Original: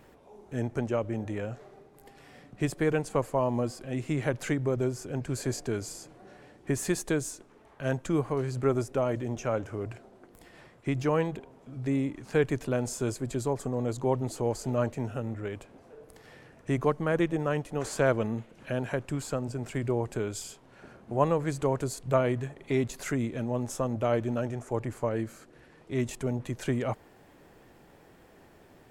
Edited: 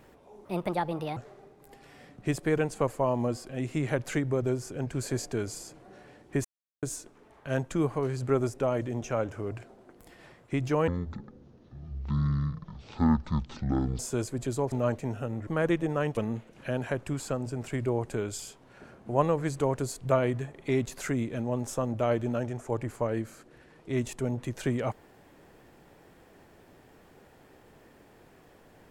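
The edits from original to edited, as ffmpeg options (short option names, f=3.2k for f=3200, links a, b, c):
-filter_complex "[0:a]asplit=10[a][b][c][d][e][f][g][h][i][j];[a]atrim=end=0.454[k];[b]atrim=start=0.45:end=1.51,asetpts=PTS-STARTPTS,asetrate=65268,aresample=44100,atrim=end_sample=31585,asetpts=PTS-STARTPTS[l];[c]atrim=start=1.506:end=6.79,asetpts=PTS-STARTPTS,afade=t=out:st=5.28:d=0.004:c=hsin[m];[d]atrim=start=6.79:end=7.17,asetpts=PTS-STARTPTS,volume=0[n];[e]atrim=start=7.17:end=11.224,asetpts=PTS-STARTPTS,afade=t=in:d=0.004:c=hsin[o];[f]atrim=start=11.22:end=12.87,asetpts=PTS-STARTPTS,asetrate=23373,aresample=44100,atrim=end_sample=137292,asetpts=PTS-STARTPTS[p];[g]atrim=start=12.866:end=13.602[q];[h]atrim=start=14.658:end=15.412[r];[i]atrim=start=16.968:end=17.672[s];[j]atrim=start=18.188[t];[k][l]acrossfade=d=0.004:c1=hsin:c2=hsin[u];[m][n][o]concat=n=3:v=0:a=1[v];[u][v]acrossfade=d=0.004:c1=hsin:c2=hsin[w];[w][p]acrossfade=d=0.004:c1=hsin:c2=hsin[x];[x][q]acrossfade=d=0.004:c1=hsin:c2=hsin[y];[y][r]acrossfade=d=0.004:c1=hsin:c2=hsin[z];[z][s]acrossfade=d=0.004:c1=hsin:c2=hsin[aa];[aa][t]acrossfade=d=0.004:c1=hsin:c2=hsin"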